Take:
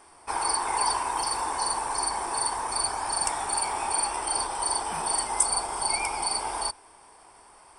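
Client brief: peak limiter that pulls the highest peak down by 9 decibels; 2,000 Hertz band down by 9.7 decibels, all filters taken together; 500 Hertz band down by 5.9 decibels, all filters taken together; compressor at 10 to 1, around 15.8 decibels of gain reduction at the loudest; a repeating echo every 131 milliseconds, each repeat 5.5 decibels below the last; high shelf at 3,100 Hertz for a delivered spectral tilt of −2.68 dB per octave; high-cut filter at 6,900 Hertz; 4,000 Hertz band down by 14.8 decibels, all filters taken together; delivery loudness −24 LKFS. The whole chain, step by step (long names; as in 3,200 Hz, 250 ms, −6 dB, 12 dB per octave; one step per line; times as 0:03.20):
low-pass filter 6,900 Hz
parametric band 500 Hz −7.5 dB
parametric band 2,000 Hz −7.5 dB
high-shelf EQ 3,100 Hz −8 dB
parametric band 4,000 Hz −9 dB
downward compressor 10 to 1, threshold −44 dBFS
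brickwall limiter −43 dBFS
repeating echo 131 ms, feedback 53%, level −5.5 dB
level +26.5 dB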